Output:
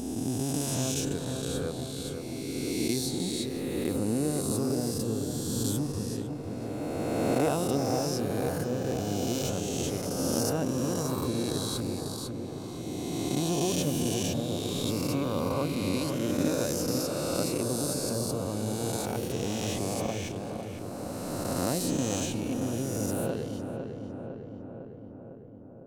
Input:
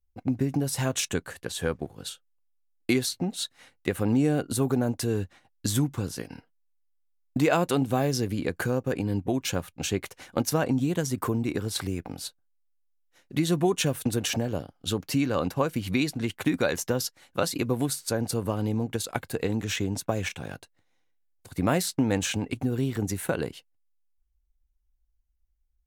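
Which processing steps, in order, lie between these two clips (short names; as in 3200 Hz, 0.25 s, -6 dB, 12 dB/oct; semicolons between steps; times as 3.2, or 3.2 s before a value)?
spectral swells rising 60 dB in 2.86 s; bell 1800 Hz -11 dB 1.4 oct; darkening echo 0.504 s, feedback 70%, low-pass 2000 Hz, level -6 dB; gain -7.5 dB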